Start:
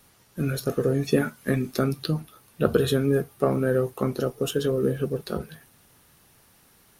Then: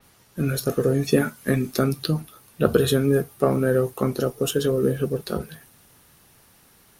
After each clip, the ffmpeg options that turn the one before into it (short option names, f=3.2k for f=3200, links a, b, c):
-af "adynamicequalizer=threshold=0.00631:dfrequency=4900:dqfactor=0.7:tfrequency=4900:tqfactor=0.7:attack=5:release=100:ratio=0.375:range=2:mode=boostabove:tftype=highshelf,volume=2.5dB"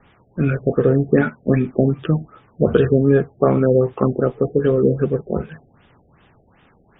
-af "alimiter=level_in=6.5dB:limit=-1dB:release=50:level=0:latency=1,afftfilt=real='re*lt(b*sr/1024,760*pow(3800/760,0.5+0.5*sin(2*PI*2.6*pts/sr)))':imag='im*lt(b*sr/1024,760*pow(3800/760,0.5+0.5*sin(2*PI*2.6*pts/sr)))':win_size=1024:overlap=0.75,volume=-1dB"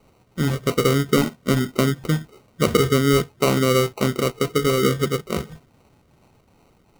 -af "acrusher=samples=26:mix=1:aa=0.000001,volume=-3dB"